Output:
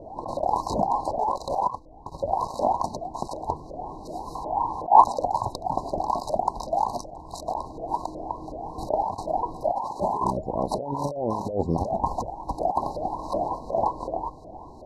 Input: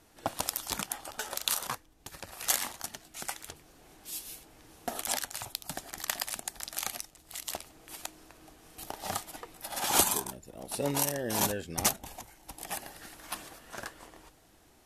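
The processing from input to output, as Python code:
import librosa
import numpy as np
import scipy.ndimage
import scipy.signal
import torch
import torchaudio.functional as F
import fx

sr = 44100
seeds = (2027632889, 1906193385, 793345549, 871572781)

y = 10.0 ** (-14.5 / 20.0) * np.tanh(x / 10.0 ** (-14.5 / 20.0))
y = fx.bass_treble(y, sr, bass_db=2, treble_db=12)
y = fx.fold_sine(y, sr, drive_db=10, ceiling_db=-1.0)
y = fx.level_steps(y, sr, step_db=10, at=(1.38, 2.18))
y = fx.filter_lfo_lowpass(y, sr, shape='saw_up', hz=2.7, low_hz=540.0, high_hz=1800.0, q=7.8)
y = fx.over_compress(y, sr, threshold_db=-22.0, ratio=-1.0)
y = fx.brickwall_bandstop(y, sr, low_hz=1100.0, high_hz=3800.0)
y = fx.band_shelf(y, sr, hz=1300.0, db=15.0, octaves=1.7, at=(4.35, 5.04))
y = F.gain(torch.from_numpy(y), -2.5).numpy()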